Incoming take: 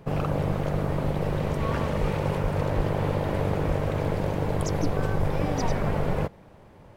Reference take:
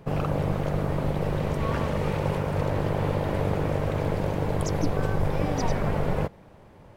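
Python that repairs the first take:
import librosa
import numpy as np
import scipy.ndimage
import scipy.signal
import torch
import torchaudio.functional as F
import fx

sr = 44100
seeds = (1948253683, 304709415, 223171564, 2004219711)

y = fx.fix_declip(x, sr, threshold_db=-16.0)
y = fx.fix_deplosive(y, sr, at_s=(2.0, 2.42, 2.76, 3.67))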